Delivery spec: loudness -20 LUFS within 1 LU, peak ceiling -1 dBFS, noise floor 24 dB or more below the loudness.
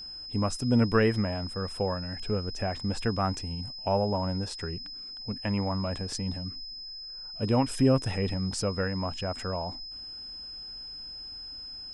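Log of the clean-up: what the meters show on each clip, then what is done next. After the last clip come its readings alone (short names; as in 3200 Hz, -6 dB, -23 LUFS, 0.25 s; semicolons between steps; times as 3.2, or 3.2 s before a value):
steady tone 5100 Hz; tone level -39 dBFS; loudness -30.5 LUFS; peak -11.0 dBFS; loudness target -20.0 LUFS
-> notch 5100 Hz, Q 30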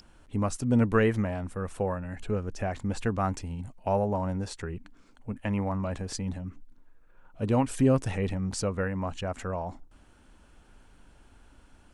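steady tone none; loudness -30.0 LUFS; peak -11.5 dBFS; loudness target -20.0 LUFS
-> gain +10 dB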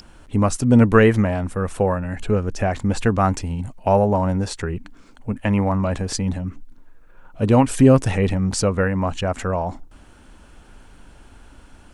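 loudness -20.0 LUFS; peak -1.5 dBFS; noise floor -47 dBFS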